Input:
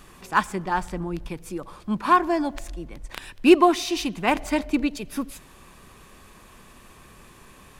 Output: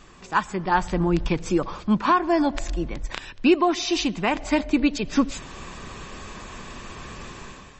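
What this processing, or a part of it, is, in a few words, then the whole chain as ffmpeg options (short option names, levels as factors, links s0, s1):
low-bitrate web radio: -af "dynaudnorm=f=170:g=5:m=3.76,alimiter=limit=0.376:level=0:latency=1:release=276" -ar 32000 -c:a libmp3lame -b:a 32k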